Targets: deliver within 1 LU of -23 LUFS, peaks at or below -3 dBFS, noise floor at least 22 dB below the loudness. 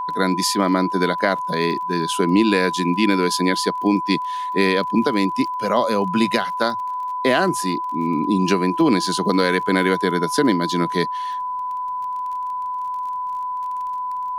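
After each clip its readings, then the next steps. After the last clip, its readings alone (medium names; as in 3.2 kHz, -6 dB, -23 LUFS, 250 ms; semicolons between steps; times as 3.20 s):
tick rate 29 per s; steady tone 1 kHz; tone level -23 dBFS; loudness -20.5 LUFS; peak level -3.5 dBFS; loudness target -23.0 LUFS
-> de-click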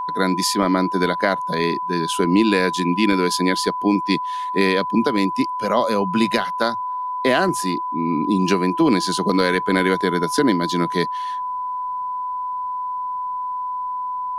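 tick rate 0.21 per s; steady tone 1 kHz; tone level -23 dBFS
-> band-stop 1 kHz, Q 30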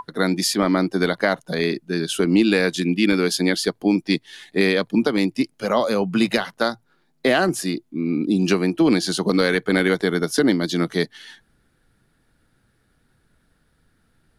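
steady tone not found; loudness -20.5 LUFS; peak level -4.0 dBFS; loudness target -23.0 LUFS
-> trim -2.5 dB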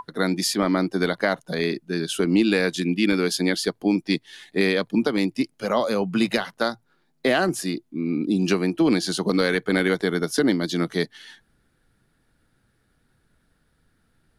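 loudness -23.0 LUFS; peak level -6.5 dBFS; noise floor -67 dBFS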